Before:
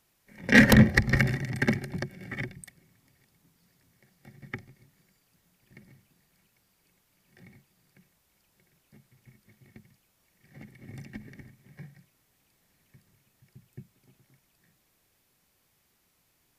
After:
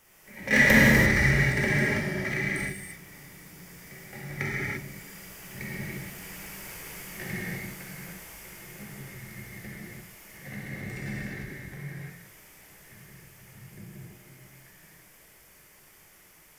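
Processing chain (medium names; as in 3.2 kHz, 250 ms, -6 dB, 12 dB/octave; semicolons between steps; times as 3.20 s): Doppler pass-by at 6.69 s, 10 m/s, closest 9.5 m; graphic EQ with 31 bands 100 Hz -9 dB, 250 Hz -10 dB, 2 kHz +5 dB, 4 kHz -10 dB; power-law waveshaper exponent 0.7; gated-style reverb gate 370 ms flat, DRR -7.5 dB; trim +6 dB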